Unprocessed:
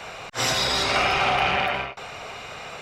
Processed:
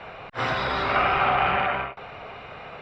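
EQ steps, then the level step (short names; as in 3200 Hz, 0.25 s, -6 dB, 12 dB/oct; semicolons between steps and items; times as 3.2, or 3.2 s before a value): dynamic EQ 1300 Hz, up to +6 dB, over -37 dBFS, Q 1.5; air absorption 400 m; 0.0 dB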